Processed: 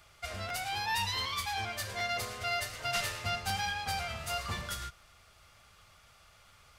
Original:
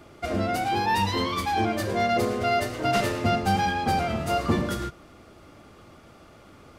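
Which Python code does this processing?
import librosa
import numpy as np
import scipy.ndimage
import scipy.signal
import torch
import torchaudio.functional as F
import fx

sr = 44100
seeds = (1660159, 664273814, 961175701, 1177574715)

y = fx.tone_stack(x, sr, knobs='10-0-10')
y = fx.buffer_crackle(y, sr, first_s=0.48, period_s=0.75, block=512, kind='repeat')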